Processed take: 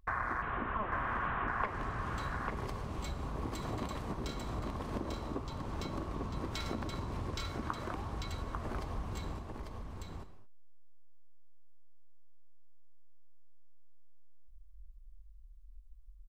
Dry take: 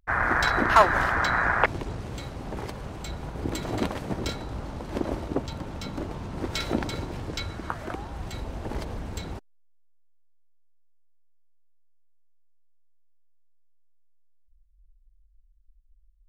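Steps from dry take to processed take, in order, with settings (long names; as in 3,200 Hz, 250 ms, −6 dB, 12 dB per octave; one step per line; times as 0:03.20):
0:00.42–0:01.48: linear delta modulator 16 kbit/s, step −31.5 dBFS
low-shelf EQ 160 Hz +4 dB
reverb whose tail is shaped and stops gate 250 ms falling, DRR 11 dB
downward compressor 4 to 1, threshold −40 dBFS, peak gain reduction 20 dB
parametric band 1,100 Hz +11 dB 0.23 octaves
single-tap delay 845 ms −4 dB
level +1 dB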